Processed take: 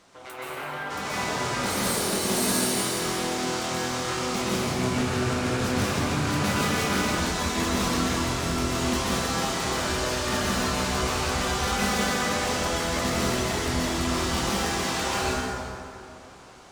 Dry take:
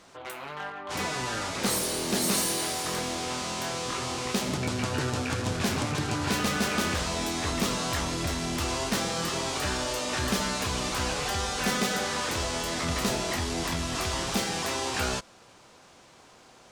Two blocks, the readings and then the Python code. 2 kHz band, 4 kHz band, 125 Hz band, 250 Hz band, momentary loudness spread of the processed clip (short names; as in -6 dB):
+3.5 dB, +1.5 dB, +3.5 dB, +4.0 dB, 5 LU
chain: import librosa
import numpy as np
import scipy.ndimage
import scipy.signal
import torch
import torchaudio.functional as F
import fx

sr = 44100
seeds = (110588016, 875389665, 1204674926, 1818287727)

p1 = 10.0 ** (-32.0 / 20.0) * (np.abs((x / 10.0 ** (-32.0 / 20.0) + 3.0) % 4.0 - 2.0) - 1.0)
p2 = x + (p1 * librosa.db_to_amplitude(-10.0))
p3 = fx.rev_plate(p2, sr, seeds[0], rt60_s=2.7, hf_ratio=0.55, predelay_ms=115, drr_db=-8.0)
y = p3 * librosa.db_to_amplitude(-5.5)